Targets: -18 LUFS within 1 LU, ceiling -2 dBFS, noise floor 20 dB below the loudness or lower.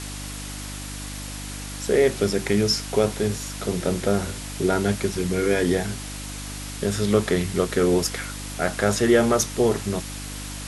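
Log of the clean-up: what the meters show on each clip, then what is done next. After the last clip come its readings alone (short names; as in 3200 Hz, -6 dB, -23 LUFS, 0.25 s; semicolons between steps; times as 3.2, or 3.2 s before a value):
hum 50 Hz; harmonics up to 300 Hz; hum level -33 dBFS; noise floor -34 dBFS; noise floor target -44 dBFS; loudness -24.0 LUFS; peak -6.0 dBFS; loudness target -18.0 LUFS
-> de-hum 50 Hz, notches 6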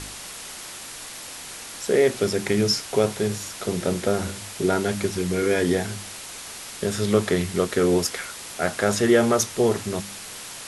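hum none; noise floor -38 dBFS; noise floor target -44 dBFS
-> noise print and reduce 6 dB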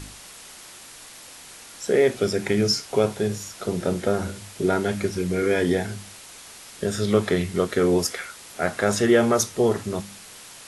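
noise floor -44 dBFS; loudness -23.5 LUFS; peak -6.5 dBFS; loudness target -18.0 LUFS
-> gain +5.5 dB; limiter -2 dBFS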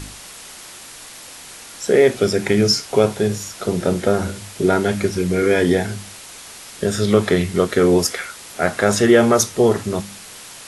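loudness -18.0 LUFS; peak -2.0 dBFS; noise floor -39 dBFS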